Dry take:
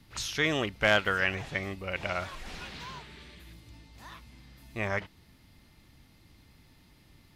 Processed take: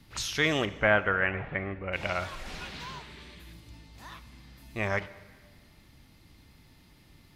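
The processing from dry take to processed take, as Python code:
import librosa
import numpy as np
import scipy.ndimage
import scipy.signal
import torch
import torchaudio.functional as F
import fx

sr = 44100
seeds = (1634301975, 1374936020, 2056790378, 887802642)

y = fx.lowpass(x, sr, hz=2200.0, slope=24, at=(0.65, 1.93))
y = fx.rev_plate(y, sr, seeds[0], rt60_s=1.6, hf_ratio=0.95, predelay_ms=0, drr_db=15.0)
y = y * librosa.db_to_amplitude(1.5)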